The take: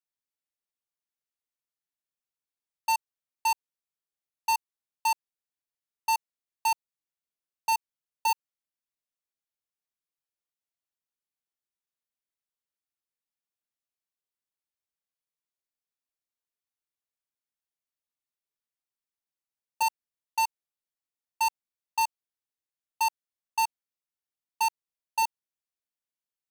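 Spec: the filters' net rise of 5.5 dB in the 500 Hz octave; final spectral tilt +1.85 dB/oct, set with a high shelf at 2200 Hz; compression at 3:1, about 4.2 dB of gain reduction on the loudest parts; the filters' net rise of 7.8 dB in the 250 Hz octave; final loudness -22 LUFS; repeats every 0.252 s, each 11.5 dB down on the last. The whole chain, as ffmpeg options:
-af "equalizer=f=250:t=o:g=8.5,equalizer=f=500:t=o:g=5,highshelf=f=2.2k:g=5.5,acompressor=threshold=-25dB:ratio=3,aecho=1:1:252|504|756:0.266|0.0718|0.0194,volume=10dB"

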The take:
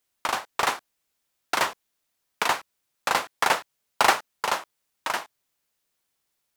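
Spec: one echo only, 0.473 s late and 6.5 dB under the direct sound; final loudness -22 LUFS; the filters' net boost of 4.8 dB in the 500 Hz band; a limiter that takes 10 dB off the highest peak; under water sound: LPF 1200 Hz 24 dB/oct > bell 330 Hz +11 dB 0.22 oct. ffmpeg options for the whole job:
-af "equalizer=f=500:t=o:g=5.5,alimiter=limit=-13dB:level=0:latency=1,lowpass=f=1.2k:w=0.5412,lowpass=f=1.2k:w=1.3066,equalizer=f=330:t=o:w=0.22:g=11,aecho=1:1:473:0.473,volume=11dB"

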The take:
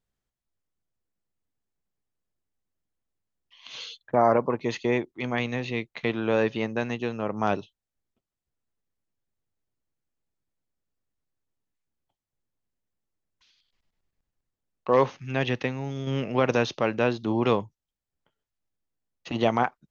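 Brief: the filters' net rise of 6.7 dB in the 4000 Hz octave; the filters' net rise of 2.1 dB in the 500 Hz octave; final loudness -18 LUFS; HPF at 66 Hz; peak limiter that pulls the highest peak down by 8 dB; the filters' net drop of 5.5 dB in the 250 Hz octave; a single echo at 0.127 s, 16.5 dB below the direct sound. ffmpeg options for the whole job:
-af "highpass=66,equalizer=f=250:t=o:g=-9,equalizer=f=500:t=o:g=4.5,equalizer=f=4k:t=o:g=8.5,alimiter=limit=-15dB:level=0:latency=1,aecho=1:1:127:0.15,volume=10.5dB"

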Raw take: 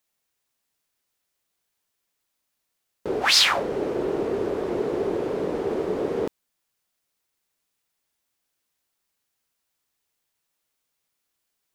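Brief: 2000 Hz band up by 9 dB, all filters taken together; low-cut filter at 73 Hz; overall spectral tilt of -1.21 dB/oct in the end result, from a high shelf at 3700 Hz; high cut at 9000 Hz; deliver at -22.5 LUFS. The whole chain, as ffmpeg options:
-af "highpass=73,lowpass=9k,equalizer=f=2k:t=o:g=9,highshelf=f=3.7k:g=7.5,volume=-4dB"

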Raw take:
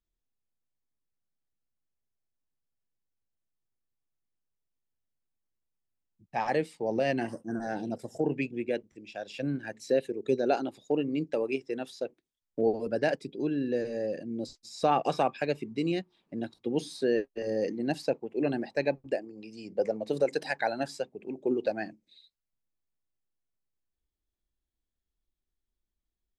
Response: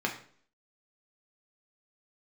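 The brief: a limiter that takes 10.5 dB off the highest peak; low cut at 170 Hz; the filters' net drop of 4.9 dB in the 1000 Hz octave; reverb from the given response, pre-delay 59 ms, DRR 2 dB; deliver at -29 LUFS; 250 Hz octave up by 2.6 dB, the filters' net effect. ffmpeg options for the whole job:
-filter_complex "[0:a]highpass=170,equalizer=f=250:t=o:g=4.5,equalizer=f=1k:t=o:g=-8,alimiter=level_in=0.5dB:limit=-24dB:level=0:latency=1,volume=-0.5dB,asplit=2[a][b];[1:a]atrim=start_sample=2205,adelay=59[c];[b][c]afir=irnorm=-1:irlink=0,volume=-9.5dB[d];[a][d]amix=inputs=2:normalize=0,volume=4dB"

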